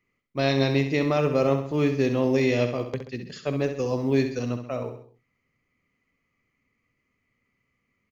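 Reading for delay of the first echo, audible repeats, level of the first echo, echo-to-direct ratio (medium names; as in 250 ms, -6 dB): 66 ms, 4, -8.5 dB, -7.5 dB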